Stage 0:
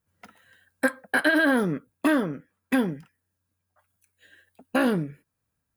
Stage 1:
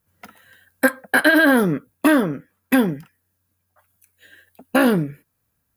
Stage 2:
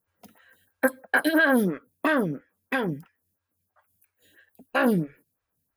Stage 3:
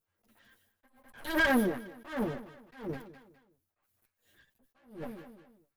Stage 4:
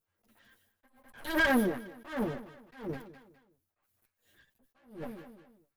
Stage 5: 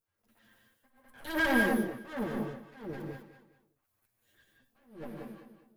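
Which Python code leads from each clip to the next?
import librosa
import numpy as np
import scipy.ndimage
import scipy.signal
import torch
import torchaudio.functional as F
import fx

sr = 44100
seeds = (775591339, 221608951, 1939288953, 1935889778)

y1 = fx.peak_eq(x, sr, hz=13000.0, db=13.0, octaves=0.25)
y1 = y1 * 10.0 ** (6.5 / 20.0)
y2 = fx.stagger_phaser(y1, sr, hz=3.0)
y2 = y2 * 10.0 ** (-3.5 / 20.0)
y3 = fx.lower_of_two(y2, sr, delay_ms=8.7)
y3 = fx.echo_feedback(y3, sr, ms=206, feedback_pct=34, wet_db=-18.0)
y3 = fx.attack_slew(y3, sr, db_per_s=140.0)
y3 = y3 * 10.0 ** (-4.5 / 20.0)
y4 = y3
y5 = fx.rev_gated(y4, sr, seeds[0], gate_ms=220, shape='rising', drr_db=0.5)
y5 = y5 * 10.0 ** (-3.0 / 20.0)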